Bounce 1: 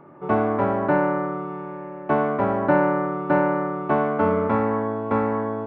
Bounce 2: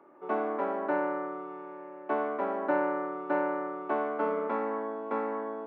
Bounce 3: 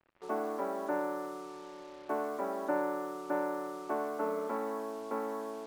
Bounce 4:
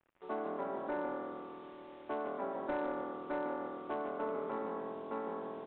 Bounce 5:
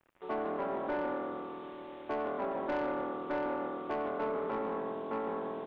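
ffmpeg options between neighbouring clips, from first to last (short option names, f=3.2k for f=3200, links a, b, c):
-af "highpass=f=270:w=0.5412,highpass=f=270:w=1.3066,volume=-8.5dB"
-af "highshelf=f=2.7k:g=-11,acrusher=bits=7:mix=0:aa=0.5,volume=-3.5dB"
-filter_complex "[0:a]aresample=8000,volume=26.5dB,asoftclip=hard,volume=-26.5dB,aresample=44100,asplit=5[a][b][c][d][e];[b]adelay=149,afreqshift=-42,volume=-8dB[f];[c]adelay=298,afreqshift=-84,volume=-16.9dB[g];[d]adelay=447,afreqshift=-126,volume=-25.7dB[h];[e]adelay=596,afreqshift=-168,volume=-34.6dB[i];[a][f][g][h][i]amix=inputs=5:normalize=0,volume=-4dB"
-af "asoftclip=type=tanh:threshold=-33dB,volume=5.5dB"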